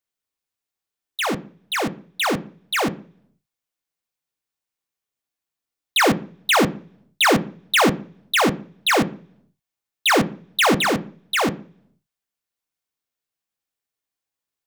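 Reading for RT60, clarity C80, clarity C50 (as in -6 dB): 0.50 s, 23.5 dB, 19.0 dB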